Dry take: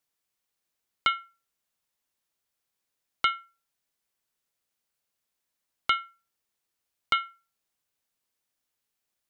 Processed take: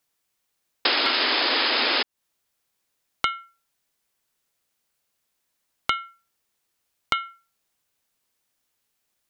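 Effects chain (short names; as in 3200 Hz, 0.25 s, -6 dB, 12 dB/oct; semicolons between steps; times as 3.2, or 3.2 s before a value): painted sound noise, 0.85–2.03, 230–5200 Hz -18 dBFS; compressor 6:1, threshold -27 dBFS, peak gain reduction 12.5 dB; gain +7 dB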